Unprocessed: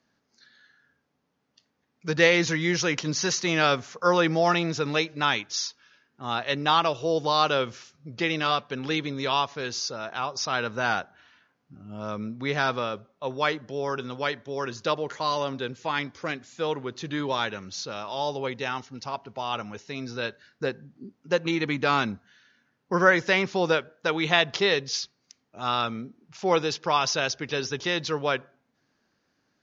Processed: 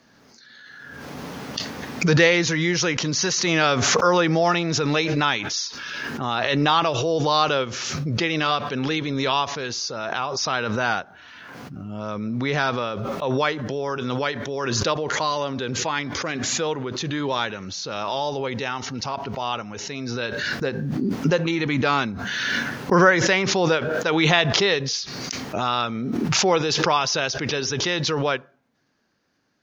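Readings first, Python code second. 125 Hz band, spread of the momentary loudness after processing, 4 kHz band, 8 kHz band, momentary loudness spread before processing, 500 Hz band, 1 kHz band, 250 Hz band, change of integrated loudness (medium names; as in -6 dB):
+8.0 dB, 12 LU, +4.5 dB, no reading, 12 LU, +3.5 dB, +3.5 dB, +6.0 dB, +4.0 dB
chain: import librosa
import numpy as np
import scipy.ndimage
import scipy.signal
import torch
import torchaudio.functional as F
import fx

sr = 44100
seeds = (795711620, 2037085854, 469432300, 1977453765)

y = fx.pre_swell(x, sr, db_per_s=20.0)
y = y * librosa.db_to_amplitude(2.0)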